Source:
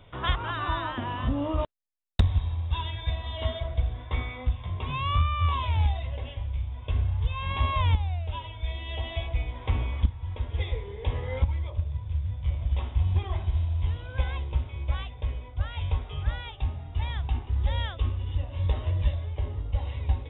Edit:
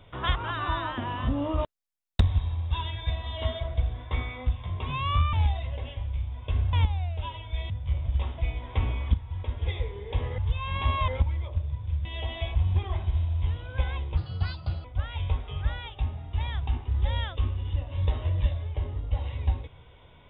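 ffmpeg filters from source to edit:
-filter_complex "[0:a]asplit=11[s0][s1][s2][s3][s4][s5][s6][s7][s8][s9][s10];[s0]atrim=end=5.332[s11];[s1]atrim=start=5.728:end=7.132[s12];[s2]atrim=start=7.828:end=8.802[s13];[s3]atrim=start=12.268:end=12.952[s14];[s4]atrim=start=9.298:end=11.302[s15];[s5]atrim=start=7.128:end=7.832[s16];[s6]atrim=start=11.298:end=12.272[s17];[s7]atrim=start=8.798:end=9.302[s18];[s8]atrim=start=12.948:end=14.574[s19];[s9]atrim=start=14.57:end=15.46,asetpts=PTS-STARTPTS,asetrate=58212,aresample=44100,atrim=end_sample=29734,asetpts=PTS-STARTPTS[s20];[s10]atrim=start=15.456[s21];[s11][s12]acrossfade=d=0.004:c1=hsin:c2=hsin[s22];[s22][s13]acrossfade=d=0.004:c1=hsin:c2=hsin[s23];[s23][s14]acrossfade=d=0.004:c1=hsin:c2=hsin[s24];[s24][s15]acrossfade=d=0.004:c1=hsin:c2=hsin[s25];[s25][s16]acrossfade=d=0.004:c1=hsin:c2=hsin[s26];[s26][s17]acrossfade=d=0.004:c1=hsin:c2=hsin[s27];[s27][s18]acrossfade=d=0.004:c1=hsin:c2=hsin[s28];[s28][s19]acrossfade=d=0.004:c1=hsin:c2=hsin[s29];[s29][s20]acrossfade=d=0.004:c1=hsin:c2=hsin[s30];[s30][s21]acrossfade=d=0.004:c1=hsin:c2=hsin"

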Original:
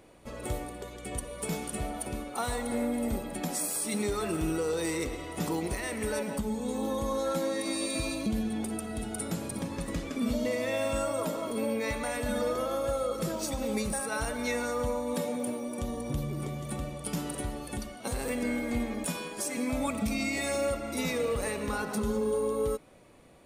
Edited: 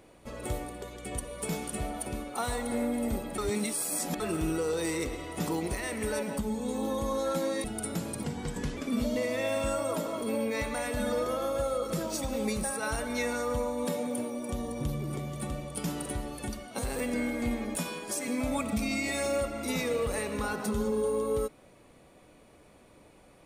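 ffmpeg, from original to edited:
-filter_complex "[0:a]asplit=6[s0][s1][s2][s3][s4][s5];[s0]atrim=end=3.382[s6];[s1]atrim=start=3.378:end=4.202,asetpts=PTS-STARTPTS,areverse[s7];[s2]atrim=start=4.198:end=7.642[s8];[s3]atrim=start=8.998:end=9.604[s9];[s4]atrim=start=9.6:end=10.06,asetpts=PTS-STARTPTS,asetrate=38367,aresample=44100,atrim=end_sample=23317,asetpts=PTS-STARTPTS[s10];[s5]atrim=start=10.056[s11];[s6][s7]acrossfade=d=0.004:c1=hsin:c2=hsin[s12];[s12][s8]acrossfade=d=0.004:c1=hsin:c2=hsin[s13];[s13][s9]acrossfade=d=0.004:c1=hsin:c2=hsin[s14];[s14][s10]acrossfade=d=0.004:c1=hsin:c2=hsin[s15];[s15][s11]acrossfade=d=0.004:c1=hsin:c2=hsin"

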